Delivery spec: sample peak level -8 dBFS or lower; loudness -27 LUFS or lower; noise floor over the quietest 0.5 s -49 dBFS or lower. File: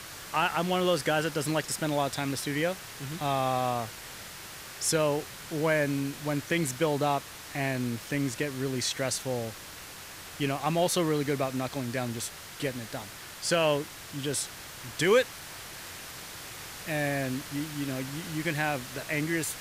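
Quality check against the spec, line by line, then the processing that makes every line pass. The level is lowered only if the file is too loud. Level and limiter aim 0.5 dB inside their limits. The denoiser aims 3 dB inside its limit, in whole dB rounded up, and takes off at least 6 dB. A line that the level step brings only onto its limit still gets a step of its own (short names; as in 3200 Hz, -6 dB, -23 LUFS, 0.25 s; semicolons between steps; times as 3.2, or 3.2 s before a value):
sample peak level -12.0 dBFS: OK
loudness -30.0 LUFS: OK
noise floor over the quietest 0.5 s -44 dBFS: fail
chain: denoiser 8 dB, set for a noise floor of -44 dBFS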